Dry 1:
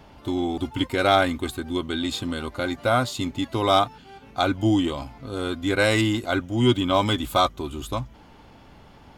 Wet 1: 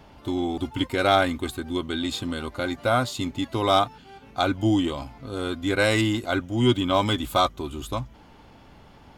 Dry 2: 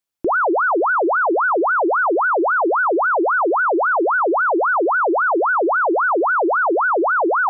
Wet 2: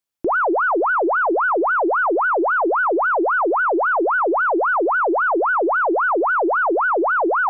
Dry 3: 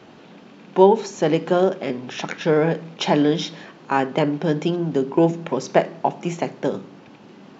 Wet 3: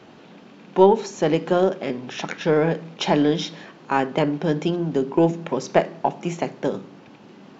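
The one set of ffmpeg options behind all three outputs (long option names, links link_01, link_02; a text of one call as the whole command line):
ffmpeg -i in.wav -af "aeval=exprs='0.891*(cos(1*acos(clip(val(0)/0.891,-1,1)))-cos(1*PI/2))+0.0501*(cos(2*acos(clip(val(0)/0.891,-1,1)))-cos(2*PI/2))':channel_layout=same,volume=-1dB" out.wav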